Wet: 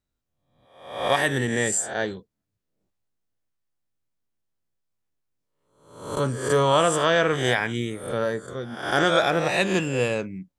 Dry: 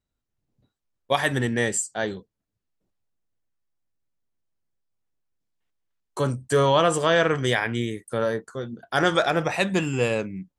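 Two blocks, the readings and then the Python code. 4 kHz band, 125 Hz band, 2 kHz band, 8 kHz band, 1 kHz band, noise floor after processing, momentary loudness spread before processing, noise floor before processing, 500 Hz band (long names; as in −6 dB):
+1.0 dB, −1.0 dB, +1.0 dB, +2.0 dB, +1.0 dB, −81 dBFS, 11 LU, −83 dBFS, +0.5 dB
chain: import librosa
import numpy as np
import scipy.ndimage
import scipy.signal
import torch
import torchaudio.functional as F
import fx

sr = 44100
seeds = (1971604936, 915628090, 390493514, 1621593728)

y = fx.spec_swells(x, sr, rise_s=0.65)
y = F.gain(torch.from_numpy(y), -1.5).numpy()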